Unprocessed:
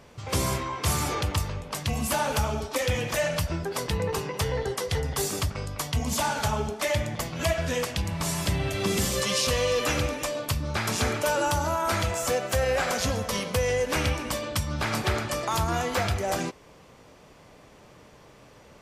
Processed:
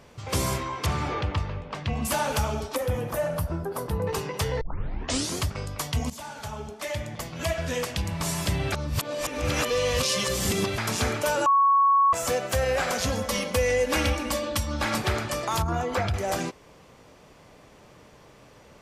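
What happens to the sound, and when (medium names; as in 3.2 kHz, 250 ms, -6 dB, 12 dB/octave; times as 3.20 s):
0.86–2.05 s: low-pass 3 kHz
2.76–4.07 s: high-order bell 3.8 kHz -12.5 dB 2.4 oct
4.61 s: tape start 0.83 s
6.10–8.03 s: fade in, from -15 dB
8.72–10.78 s: reverse
11.46–12.13 s: bleep 1.11 kHz -16 dBFS
13.12–14.98 s: comb 3.6 ms
15.62–16.14 s: resonances exaggerated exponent 1.5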